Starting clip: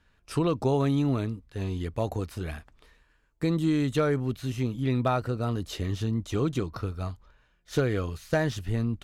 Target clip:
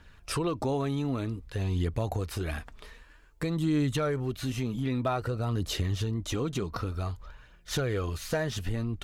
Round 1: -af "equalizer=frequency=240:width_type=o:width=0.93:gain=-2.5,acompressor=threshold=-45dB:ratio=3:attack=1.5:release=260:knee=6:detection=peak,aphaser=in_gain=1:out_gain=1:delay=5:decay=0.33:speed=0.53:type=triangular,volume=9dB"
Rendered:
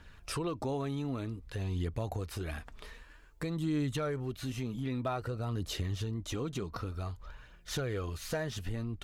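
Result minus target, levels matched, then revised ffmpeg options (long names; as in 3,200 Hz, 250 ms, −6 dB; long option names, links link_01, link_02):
downward compressor: peak gain reduction +5.5 dB
-af "equalizer=frequency=240:width_type=o:width=0.93:gain=-2.5,acompressor=threshold=-37dB:ratio=3:attack=1.5:release=260:knee=6:detection=peak,aphaser=in_gain=1:out_gain=1:delay=5:decay=0.33:speed=0.53:type=triangular,volume=9dB"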